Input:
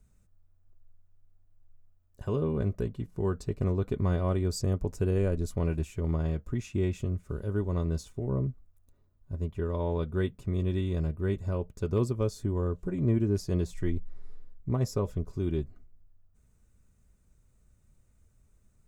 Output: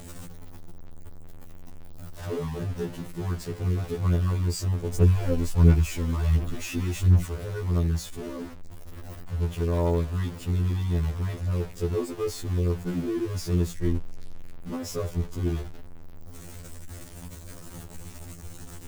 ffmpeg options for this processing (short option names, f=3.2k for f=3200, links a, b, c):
-filter_complex "[0:a]aeval=exprs='val(0)+0.5*0.0266*sgn(val(0))':c=same,asplit=3[a][b][c];[a]afade=t=out:st=4.92:d=0.02[d];[b]aphaser=in_gain=1:out_gain=1:delay=4:decay=0.65:speed=1.4:type=sinusoidal,afade=t=in:st=4.92:d=0.02,afade=t=out:st=7.26:d=0.02[e];[c]afade=t=in:st=7.26:d=0.02[f];[d][e][f]amix=inputs=3:normalize=0,afftfilt=real='re*2*eq(mod(b,4),0)':imag='im*2*eq(mod(b,4),0)':win_size=2048:overlap=0.75"